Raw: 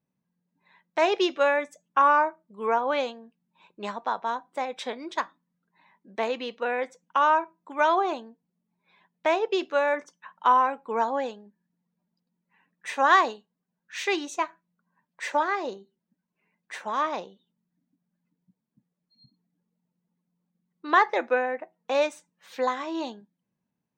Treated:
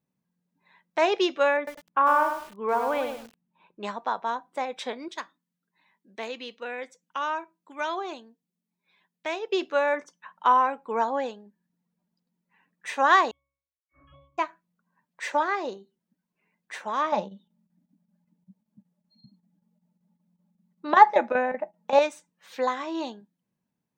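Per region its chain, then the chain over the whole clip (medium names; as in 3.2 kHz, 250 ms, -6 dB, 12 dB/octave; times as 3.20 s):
1.57–3.83 s: distance through air 350 m + bit-crushed delay 101 ms, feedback 35%, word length 7-bit, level -6 dB
5.08–9.52 s: high-pass 300 Hz 6 dB/octave + peaking EQ 850 Hz -9 dB 2.3 oct
13.31–14.38 s: frequency inversion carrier 3.7 kHz + pitch-class resonator C#, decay 0.63 s
17.12–21.99 s: square tremolo 5.2 Hz, depth 65%, duty 85% + small resonant body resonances 200/600/840 Hz, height 14 dB, ringing for 70 ms
whole clip: none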